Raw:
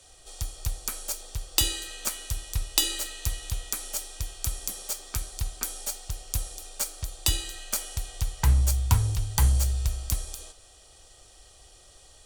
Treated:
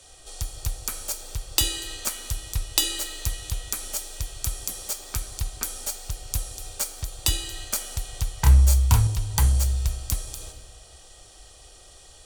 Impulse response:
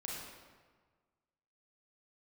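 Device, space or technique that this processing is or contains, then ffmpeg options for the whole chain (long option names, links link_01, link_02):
ducked reverb: -filter_complex "[0:a]asettb=1/sr,asplit=3[link_01][link_02][link_03];[link_01]atrim=end=8.404[link_04];[link_02]atrim=start=8.4:end=9.07,asetpts=PTS-STARTPTS,afade=type=in:duration=0.004:curve=qsin,afade=type=out:start_time=0.666:duration=0.004:curve=qsin,asplit=2[link_05][link_06];[link_06]adelay=29,volume=-2dB[link_07];[link_05][link_07]amix=inputs=2:normalize=0,atrim=end_sample=29547[link_08];[link_03]atrim=start=9.066[link_09];[link_04][link_08]acrossfade=duration=0.004:curve1=hsin:curve2=qsin[link_10];[link_10][link_09]acrossfade=duration=0.004:curve1=qsin:curve2=hsin,asplit=3[link_11][link_12][link_13];[1:a]atrim=start_sample=2205[link_14];[link_12][link_14]afir=irnorm=-1:irlink=0[link_15];[link_13]apad=whole_len=540230[link_16];[link_15][link_16]sidechaincompress=threshold=-37dB:ratio=8:attack=9.9:release=235,volume=-3.5dB[link_17];[link_11][link_17]amix=inputs=2:normalize=0,volume=1dB"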